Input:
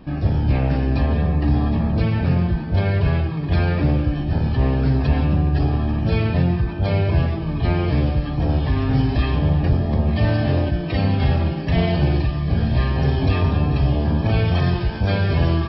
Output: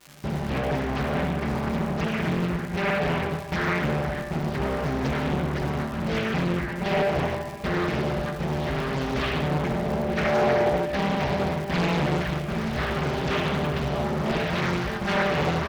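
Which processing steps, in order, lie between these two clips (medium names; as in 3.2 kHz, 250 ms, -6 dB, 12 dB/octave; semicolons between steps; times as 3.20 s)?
gate with hold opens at -13 dBFS; high-pass 170 Hz 6 dB/octave; peaking EQ 1.8 kHz +6 dB 0.74 oct; comb 5 ms, depth 89%; crackle 340 per s -28 dBFS; saturation -13.5 dBFS, distortion -19 dB; band-passed feedback delay 66 ms, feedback 83%, band-pass 880 Hz, level -9.5 dB; on a send at -6 dB: reverberation RT60 1.7 s, pre-delay 62 ms; on the sum: loudspeaker Doppler distortion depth 0.76 ms; trim -4.5 dB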